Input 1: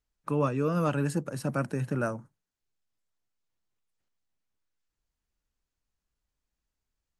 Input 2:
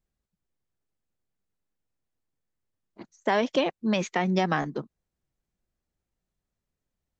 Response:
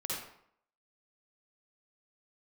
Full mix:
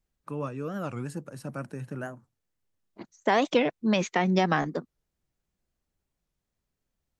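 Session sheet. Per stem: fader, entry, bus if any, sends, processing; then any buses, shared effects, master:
−6.5 dB, 0.00 s, no send, no processing
+1.0 dB, 0.00 s, no send, no processing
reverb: not used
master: wow of a warped record 45 rpm, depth 250 cents

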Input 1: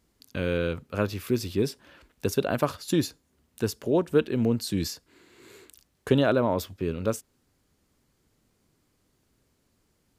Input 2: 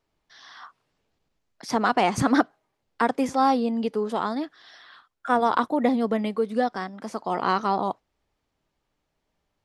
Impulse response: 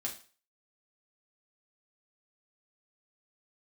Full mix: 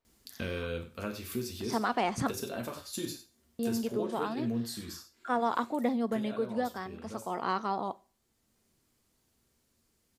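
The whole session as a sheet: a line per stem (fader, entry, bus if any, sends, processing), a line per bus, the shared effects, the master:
0:04.63 −2.5 dB → 0:05.01 −10 dB, 0.05 s, send −3 dB, echo send −15.5 dB, high-shelf EQ 3,400 Hz +7.5 dB; downward compressor 2 to 1, threshold −36 dBFS, peak gain reduction 11.5 dB; automatic ducking −16 dB, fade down 1.85 s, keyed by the second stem
−9.5 dB, 0.00 s, muted 0:02.31–0:03.59, send −13.5 dB, no echo send, no processing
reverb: on, RT60 0.40 s, pre-delay 4 ms
echo: single-tap delay 96 ms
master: no processing

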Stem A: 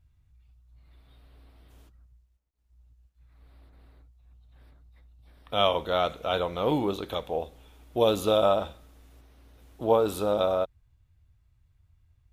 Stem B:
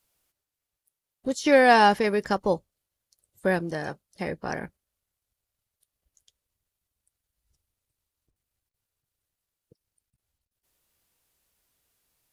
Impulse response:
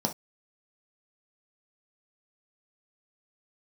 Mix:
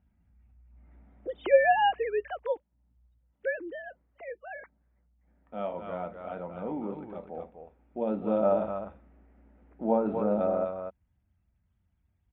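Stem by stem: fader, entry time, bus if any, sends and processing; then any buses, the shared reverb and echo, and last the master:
0:02.76 −2.5 dB → 0:03.33 −15.5 dB → 0:07.83 −15.5 dB → 0:08.59 −8.5 dB, 0.00 s, send −11 dB, echo send −3 dB, Butterworth low-pass 2,300 Hz 36 dB per octave; parametric band 200 Hz +7 dB 0.38 octaves; automatic ducking −12 dB, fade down 0.30 s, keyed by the second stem
−5.5 dB, 0.00 s, no send, no echo send, three sine waves on the formant tracks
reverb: on, pre-delay 3 ms
echo: single-tap delay 250 ms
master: high-pass filter 46 Hz

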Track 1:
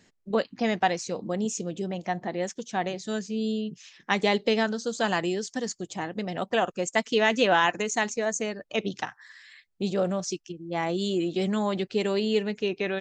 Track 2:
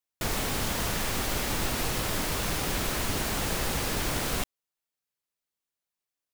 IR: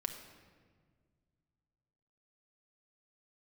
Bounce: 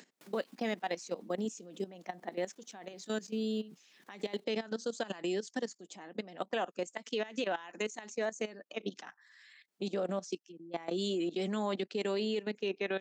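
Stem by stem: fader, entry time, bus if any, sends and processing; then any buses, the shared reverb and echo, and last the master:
−2.5 dB, 0.00 s, no send, brickwall limiter −19.5 dBFS, peak gain reduction 11.5 dB
−19.5 dB, 0.00 s, no send, flanger 0.92 Hz, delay 3.1 ms, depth 8.8 ms, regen +27%; automatic ducking −13 dB, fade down 0.95 s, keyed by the first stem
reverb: not used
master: output level in coarse steps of 16 dB; high-pass filter 200 Hz 24 dB per octave; upward compression, threshold −51 dBFS

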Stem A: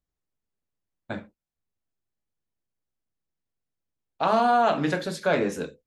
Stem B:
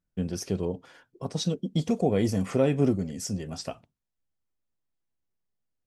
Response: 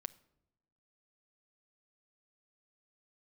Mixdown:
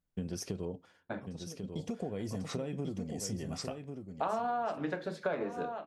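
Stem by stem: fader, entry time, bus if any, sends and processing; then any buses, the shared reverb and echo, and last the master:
+1.0 dB, 0.00 s, send −6 dB, echo send −17.5 dB, low-pass filter 1,200 Hz 6 dB per octave; low-shelf EQ 200 Hz −9 dB; expander for the loud parts 1.5 to 1, over −33 dBFS
−4.5 dB, 0.00 s, send −13 dB, echo send −5.5 dB, downward compressor 12 to 1, threshold −29 dBFS, peak gain reduction 12.5 dB; automatic ducking −23 dB, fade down 0.35 s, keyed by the first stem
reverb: on, pre-delay 7 ms
echo: single-tap delay 1,094 ms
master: downward compressor 12 to 1, threshold −30 dBFS, peak gain reduction 14.5 dB

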